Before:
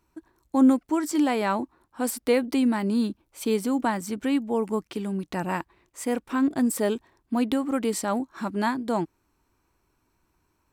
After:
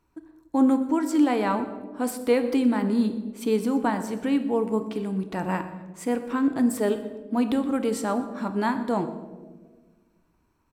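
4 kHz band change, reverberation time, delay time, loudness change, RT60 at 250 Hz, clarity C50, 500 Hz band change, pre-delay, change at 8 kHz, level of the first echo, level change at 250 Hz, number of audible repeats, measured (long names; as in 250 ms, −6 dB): −2.5 dB, 1.4 s, 122 ms, +0.5 dB, 2.0 s, 11.0 dB, +1.5 dB, 4 ms, −4.5 dB, −19.0 dB, +1.0 dB, 2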